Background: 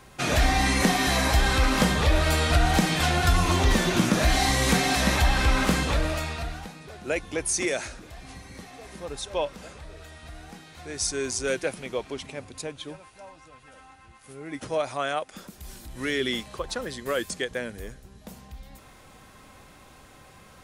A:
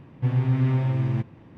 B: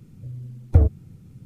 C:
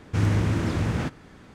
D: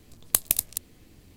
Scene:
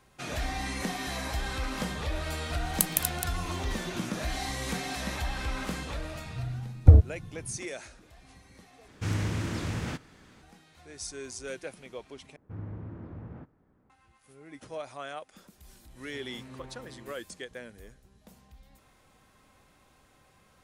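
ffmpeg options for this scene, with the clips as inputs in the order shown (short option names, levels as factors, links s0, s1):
-filter_complex "[3:a]asplit=2[s0][s1];[0:a]volume=0.266[s2];[4:a]acompressor=mode=upward:threshold=0.00708:ratio=2.5:attack=3.2:release=140:knee=2.83:detection=peak[s3];[2:a]lowshelf=f=200:g=4.5[s4];[s0]highshelf=f=2200:g=8.5[s5];[s1]lowpass=1100[s6];[1:a]highpass=280[s7];[s2]asplit=3[s8][s9][s10];[s8]atrim=end=8.884[s11];[s5]atrim=end=1.54,asetpts=PTS-STARTPTS,volume=0.398[s12];[s9]atrim=start=10.416:end=12.364[s13];[s6]atrim=end=1.54,asetpts=PTS-STARTPTS,volume=0.133[s14];[s10]atrim=start=13.896[s15];[s3]atrim=end=1.36,asetpts=PTS-STARTPTS,volume=0.631,afade=t=in:d=0.004:c=hsin,afade=t=out:st=1.356:d=0.004:c=hsin,adelay=2460[s16];[s4]atrim=end=1.45,asetpts=PTS-STARTPTS,volume=0.75,afade=t=in:d=0.004:c=hsin,afade=t=out:st=1.446:d=0.004:c=hsin,adelay=6130[s17];[s7]atrim=end=1.57,asetpts=PTS-STARTPTS,volume=0.158,afade=t=in:d=0.004:c=hsin,afade=t=out:st=1.566:d=0.004:c=hsin,adelay=15900[s18];[s11][s12]acrossfade=d=0.004:c1=hsin:c2=hsin[s19];[s19][s13]acrossfade=d=0.004:c1=hsin:c2=hsin[s20];[s20][s14]acrossfade=d=0.004:c1=hsin:c2=hsin[s21];[s21][s15]acrossfade=d=0.004:c1=hsin:c2=hsin[s22];[s22][s16][s17][s18]amix=inputs=4:normalize=0"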